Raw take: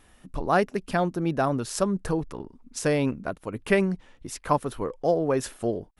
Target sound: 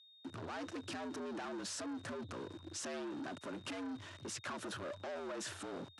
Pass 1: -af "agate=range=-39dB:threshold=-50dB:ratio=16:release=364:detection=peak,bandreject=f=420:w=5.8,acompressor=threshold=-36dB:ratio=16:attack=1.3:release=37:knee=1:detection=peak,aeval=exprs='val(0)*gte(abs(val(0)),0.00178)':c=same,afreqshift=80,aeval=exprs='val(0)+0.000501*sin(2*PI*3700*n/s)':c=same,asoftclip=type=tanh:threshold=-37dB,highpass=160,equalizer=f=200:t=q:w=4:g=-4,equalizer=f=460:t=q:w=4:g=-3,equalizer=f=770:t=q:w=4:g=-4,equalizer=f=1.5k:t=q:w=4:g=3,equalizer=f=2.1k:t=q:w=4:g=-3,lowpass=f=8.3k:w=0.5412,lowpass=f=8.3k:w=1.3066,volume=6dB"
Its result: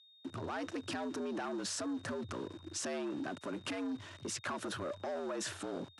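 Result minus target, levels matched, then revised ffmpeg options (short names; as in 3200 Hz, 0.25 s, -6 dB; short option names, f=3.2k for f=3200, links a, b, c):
soft clip: distortion -7 dB
-af "agate=range=-39dB:threshold=-50dB:ratio=16:release=364:detection=peak,bandreject=f=420:w=5.8,acompressor=threshold=-36dB:ratio=16:attack=1.3:release=37:knee=1:detection=peak,aeval=exprs='val(0)*gte(abs(val(0)),0.00178)':c=same,afreqshift=80,aeval=exprs='val(0)+0.000501*sin(2*PI*3700*n/s)':c=same,asoftclip=type=tanh:threshold=-44.5dB,highpass=160,equalizer=f=200:t=q:w=4:g=-4,equalizer=f=460:t=q:w=4:g=-3,equalizer=f=770:t=q:w=4:g=-4,equalizer=f=1.5k:t=q:w=4:g=3,equalizer=f=2.1k:t=q:w=4:g=-3,lowpass=f=8.3k:w=0.5412,lowpass=f=8.3k:w=1.3066,volume=6dB"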